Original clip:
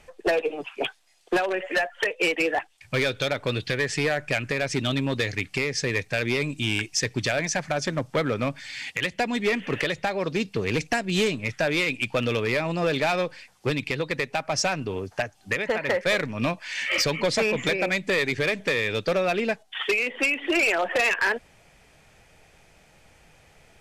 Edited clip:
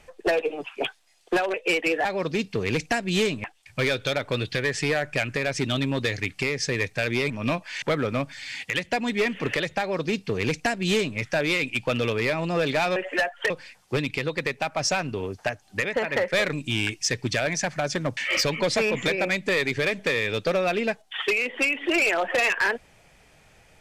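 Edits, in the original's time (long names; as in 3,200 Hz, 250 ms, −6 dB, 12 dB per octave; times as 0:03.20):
0:01.54–0:02.08: move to 0:13.23
0:06.45–0:08.09: swap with 0:16.26–0:16.78
0:10.06–0:11.45: duplicate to 0:02.59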